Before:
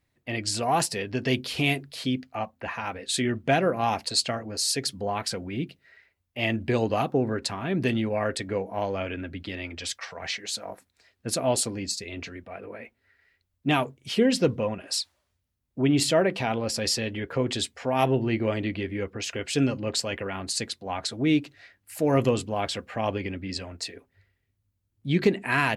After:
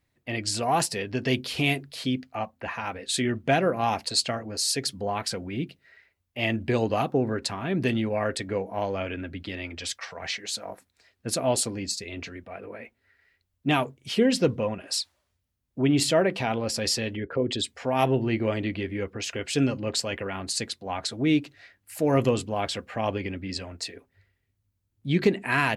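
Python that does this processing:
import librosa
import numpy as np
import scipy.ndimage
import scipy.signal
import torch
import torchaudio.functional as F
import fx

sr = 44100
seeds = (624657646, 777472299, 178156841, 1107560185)

y = fx.envelope_sharpen(x, sr, power=1.5, at=(17.15, 17.67), fade=0.02)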